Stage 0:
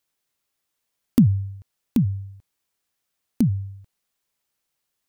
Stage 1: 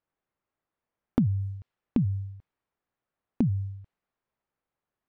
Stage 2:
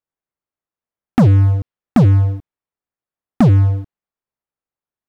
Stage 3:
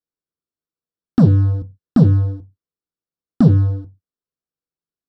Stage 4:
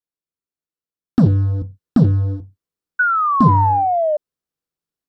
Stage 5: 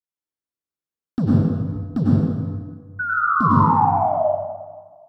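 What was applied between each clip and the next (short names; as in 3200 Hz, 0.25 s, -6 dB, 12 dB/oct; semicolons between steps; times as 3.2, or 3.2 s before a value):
low-pass opened by the level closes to 1400 Hz, open at -18 dBFS; compressor 4:1, threshold -22 dBFS, peak gain reduction 9.5 dB
sample leveller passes 5; gain +3.5 dB
reverb RT60 0.20 s, pre-delay 3 ms, DRR 8 dB; gain -11.5 dB
painted sound fall, 2.99–4.17, 590–1500 Hz -13 dBFS; transient shaper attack +4 dB, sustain +8 dB; gain -4 dB
plate-style reverb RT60 1.5 s, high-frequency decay 0.6×, pre-delay 85 ms, DRR -6.5 dB; gain -9.5 dB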